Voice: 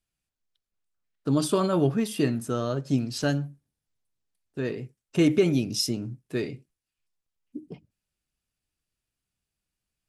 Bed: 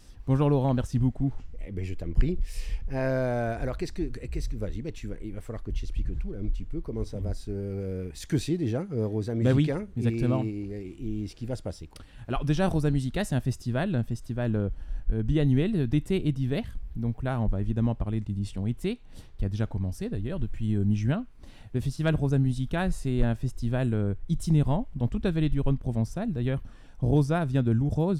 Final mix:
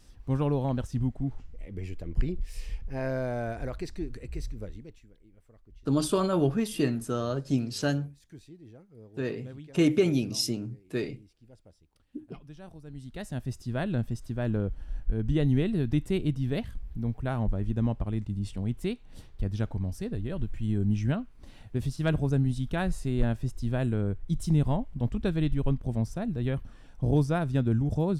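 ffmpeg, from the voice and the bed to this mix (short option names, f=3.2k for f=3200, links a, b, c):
-filter_complex "[0:a]adelay=4600,volume=-2dB[a];[1:a]volume=16.5dB,afade=t=out:st=4.44:d=0.63:silence=0.125893,afade=t=in:st=12.85:d=1.14:silence=0.0944061[b];[a][b]amix=inputs=2:normalize=0"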